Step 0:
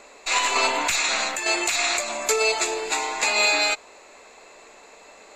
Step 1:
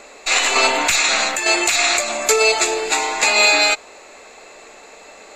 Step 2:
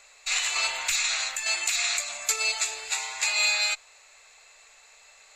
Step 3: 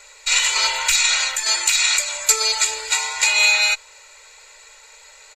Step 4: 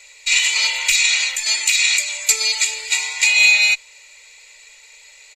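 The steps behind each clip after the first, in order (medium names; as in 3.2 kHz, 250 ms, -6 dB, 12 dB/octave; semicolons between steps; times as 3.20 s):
band-stop 1 kHz, Q 12; trim +6.5 dB
amplifier tone stack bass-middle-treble 10-0-10; trim -7 dB
comb 2.1 ms, depth 99%; trim +6 dB
resonant high shelf 1.8 kHz +6 dB, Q 3; trim -6.5 dB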